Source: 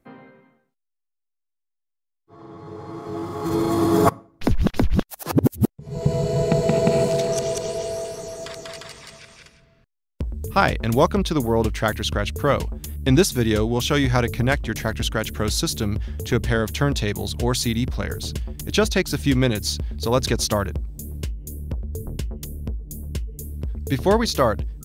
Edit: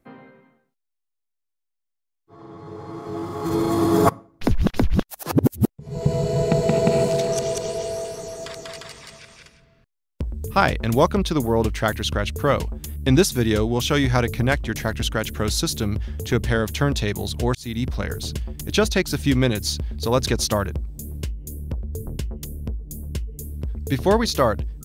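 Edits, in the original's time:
17.55–17.87 s: fade in

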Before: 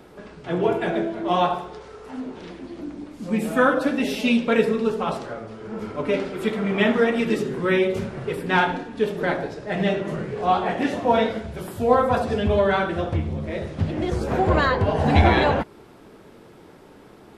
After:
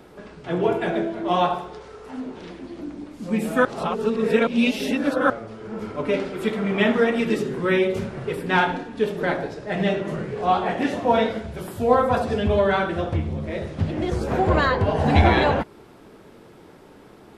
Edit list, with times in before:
3.65–5.30 s: reverse

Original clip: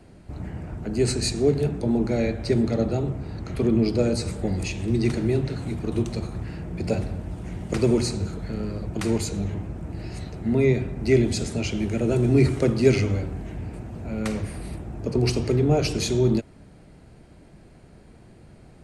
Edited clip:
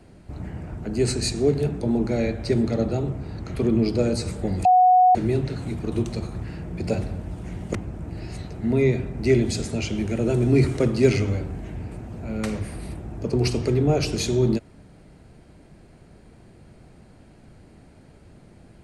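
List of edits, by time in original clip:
4.65–5.15 s: bleep 735 Hz -11.5 dBFS
7.75–9.57 s: delete

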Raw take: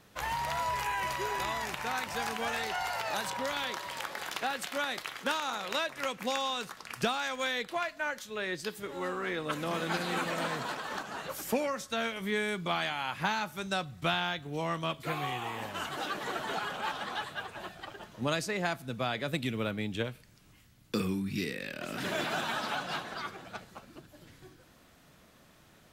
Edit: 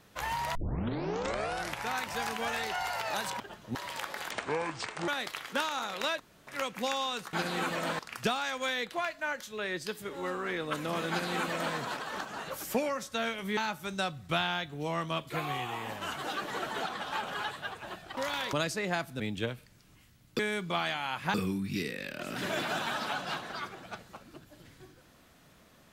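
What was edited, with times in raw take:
0.55 s: tape start 1.33 s
3.40–3.76 s: swap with 17.90–18.25 s
4.32–4.79 s: speed 61%
5.91 s: insert room tone 0.27 s
9.88–10.54 s: copy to 6.77 s
12.35–13.30 s: move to 20.96 s
16.60–17.17 s: reverse
18.92–19.77 s: delete

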